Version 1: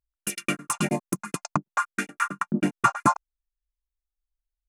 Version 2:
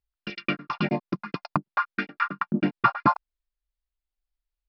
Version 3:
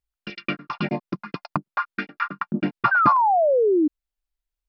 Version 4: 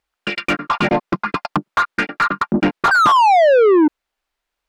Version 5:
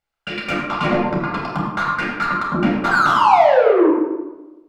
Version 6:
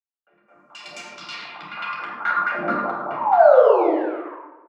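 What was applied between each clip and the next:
Butterworth low-pass 5,100 Hz 96 dB per octave
sound drawn into the spectrogram fall, 0:02.91–0:03.88, 290–1,600 Hz −18 dBFS
mid-hump overdrive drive 28 dB, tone 1,500 Hz, clips at −4.5 dBFS
convolution reverb RT60 1.1 s, pre-delay 12 ms, DRR −3.5 dB; level −9 dB
band-pass filter sweep 6,800 Hz → 590 Hz, 0:00.55–0:02.69; three-band delay without the direct sound mids, lows, highs 60/480 ms, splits 330/1,000 Hz; level +4 dB

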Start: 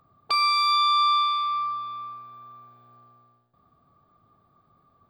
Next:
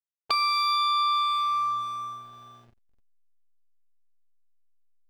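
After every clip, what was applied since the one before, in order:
slack as between gear wheels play −40.5 dBFS
downward compressor 2.5 to 1, threshold −27 dBFS, peak gain reduction 6.5 dB
level +3 dB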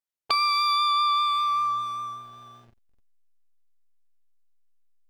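pitch vibrato 5.1 Hz 16 cents
level +1.5 dB

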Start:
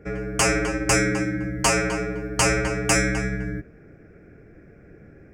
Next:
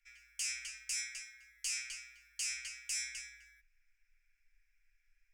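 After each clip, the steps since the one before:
inverse Chebyshev band-stop filter 110–570 Hz, stop band 80 dB
brickwall limiter −21.5 dBFS, peak gain reduction 10 dB
level −6.5 dB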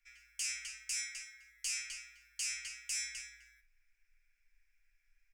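double-tracking delay 50 ms −12.5 dB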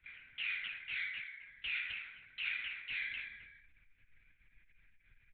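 linear-prediction vocoder at 8 kHz whisper
level +6.5 dB

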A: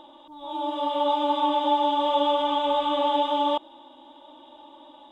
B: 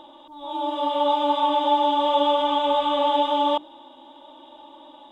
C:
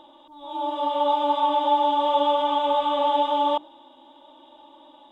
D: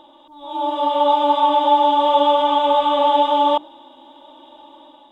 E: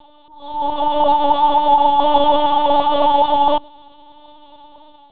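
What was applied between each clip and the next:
mains-hum notches 50/100/150/200/250/300 Hz; level +2.5 dB
dynamic equaliser 840 Hz, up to +4 dB, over −30 dBFS, Q 0.92; level −4 dB
automatic gain control gain up to 3.5 dB; level +2.5 dB
linear-prediction vocoder at 8 kHz pitch kept; level +2 dB

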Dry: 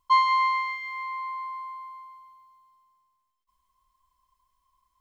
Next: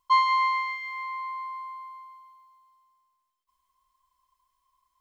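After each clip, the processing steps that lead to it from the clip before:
low-shelf EQ 340 Hz −8.5 dB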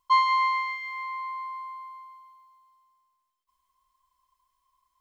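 no processing that can be heard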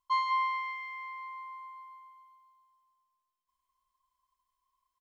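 single-tap delay 199 ms −9 dB
level −8.5 dB

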